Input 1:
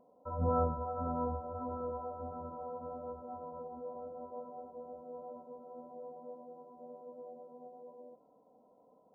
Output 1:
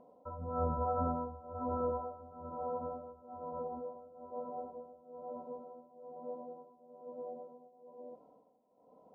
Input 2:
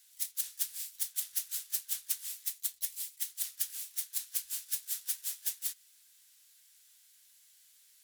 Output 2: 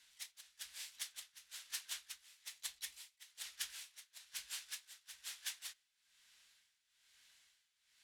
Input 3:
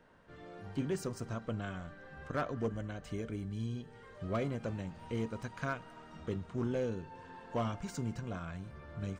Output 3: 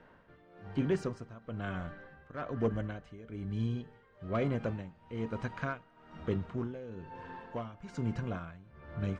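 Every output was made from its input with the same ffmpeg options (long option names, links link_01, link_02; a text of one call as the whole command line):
ffmpeg -i in.wav -af "lowpass=2600,aemphasis=mode=production:type=50kf,tremolo=f=1.1:d=0.84,volume=5dB" out.wav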